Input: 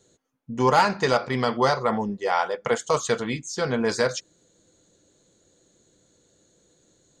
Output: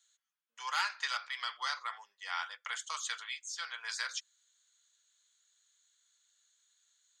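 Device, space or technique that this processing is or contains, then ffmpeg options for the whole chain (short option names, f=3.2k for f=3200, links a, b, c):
headphones lying on a table: -af "highpass=f=1.3k:w=0.5412,highpass=f=1.3k:w=1.3066,equalizer=f=3.3k:t=o:w=0.29:g=5.5,volume=-7.5dB"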